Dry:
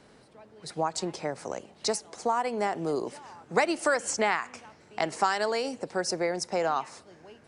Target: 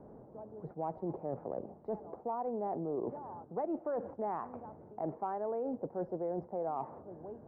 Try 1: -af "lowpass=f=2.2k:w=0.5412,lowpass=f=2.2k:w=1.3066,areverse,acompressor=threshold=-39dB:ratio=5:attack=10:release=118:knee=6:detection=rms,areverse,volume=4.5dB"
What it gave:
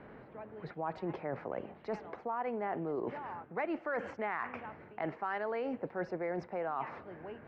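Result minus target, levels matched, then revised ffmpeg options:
2000 Hz band +19.0 dB
-af "lowpass=f=860:w=0.5412,lowpass=f=860:w=1.3066,areverse,acompressor=threshold=-39dB:ratio=5:attack=10:release=118:knee=6:detection=rms,areverse,volume=4.5dB"

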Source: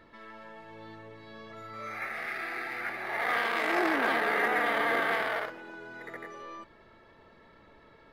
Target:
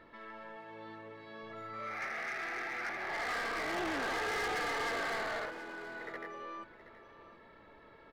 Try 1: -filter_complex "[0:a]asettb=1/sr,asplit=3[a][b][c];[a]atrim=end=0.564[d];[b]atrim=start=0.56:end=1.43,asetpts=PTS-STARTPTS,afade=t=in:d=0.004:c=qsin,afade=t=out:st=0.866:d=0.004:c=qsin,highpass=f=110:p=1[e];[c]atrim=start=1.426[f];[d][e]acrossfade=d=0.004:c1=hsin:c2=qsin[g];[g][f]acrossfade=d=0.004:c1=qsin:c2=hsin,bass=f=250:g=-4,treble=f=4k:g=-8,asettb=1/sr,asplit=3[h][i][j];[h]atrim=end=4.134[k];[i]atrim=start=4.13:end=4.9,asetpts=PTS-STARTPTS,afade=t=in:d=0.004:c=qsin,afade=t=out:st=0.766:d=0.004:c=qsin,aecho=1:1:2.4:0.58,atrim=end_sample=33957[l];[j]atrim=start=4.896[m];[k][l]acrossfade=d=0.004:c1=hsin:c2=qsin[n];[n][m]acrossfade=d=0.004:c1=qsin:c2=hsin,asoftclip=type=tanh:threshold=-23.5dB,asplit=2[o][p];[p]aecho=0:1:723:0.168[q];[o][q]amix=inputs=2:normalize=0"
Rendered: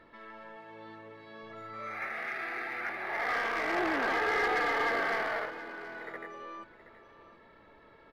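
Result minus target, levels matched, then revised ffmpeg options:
soft clip: distortion -8 dB
-filter_complex "[0:a]asettb=1/sr,asplit=3[a][b][c];[a]atrim=end=0.564[d];[b]atrim=start=0.56:end=1.43,asetpts=PTS-STARTPTS,afade=t=in:d=0.004:c=qsin,afade=t=out:st=0.866:d=0.004:c=qsin,highpass=f=110:p=1[e];[c]atrim=start=1.426[f];[d][e]acrossfade=d=0.004:c1=hsin:c2=qsin[g];[g][f]acrossfade=d=0.004:c1=qsin:c2=hsin,bass=f=250:g=-4,treble=f=4k:g=-8,asettb=1/sr,asplit=3[h][i][j];[h]atrim=end=4.134[k];[i]atrim=start=4.13:end=4.9,asetpts=PTS-STARTPTS,afade=t=in:d=0.004:c=qsin,afade=t=out:st=0.766:d=0.004:c=qsin,aecho=1:1:2.4:0.58,atrim=end_sample=33957[l];[j]atrim=start=4.896[m];[k][l]acrossfade=d=0.004:c1=hsin:c2=qsin[n];[n][m]acrossfade=d=0.004:c1=qsin:c2=hsin,asoftclip=type=tanh:threshold=-33dB,asplit=2[o][p];[p]aecho=0:1:723:0.168[q];[o][q]amix=inputs=2:normalize=0"

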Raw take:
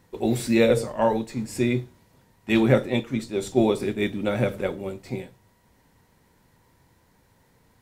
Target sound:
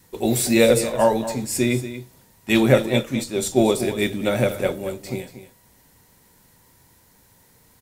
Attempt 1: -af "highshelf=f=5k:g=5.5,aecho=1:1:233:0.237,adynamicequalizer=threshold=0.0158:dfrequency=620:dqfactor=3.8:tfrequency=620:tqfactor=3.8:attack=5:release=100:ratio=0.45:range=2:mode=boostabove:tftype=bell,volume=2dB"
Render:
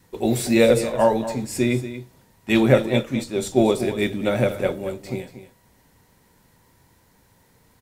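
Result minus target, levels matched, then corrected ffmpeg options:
8000 Hz band -5.5 dB
-af "highshelf=f=5k:g=14,aecho=1:1:233:0.237,adynamicequalizer=threshold=0.0158:dfrequency=620:dqfactor=3.8:tfrequency=620:tqfactor=3.8:attack=5:release=100:ratio=0.45:range=2:mode=boostabove:tftype=bell,volume=2dB"

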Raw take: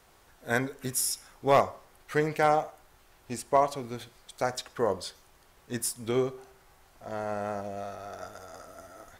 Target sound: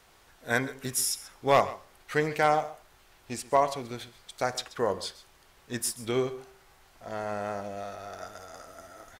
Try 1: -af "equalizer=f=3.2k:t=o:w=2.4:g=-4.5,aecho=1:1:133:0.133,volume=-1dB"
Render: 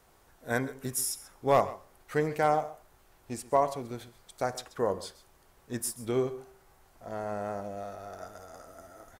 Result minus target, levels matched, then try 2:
4000 Hz band -5.5 dB
-af "equalizer=f=3.2k:t=o:w=2.4:g=4.5,aecho=1:1:133:0.133,volume=-1dB"

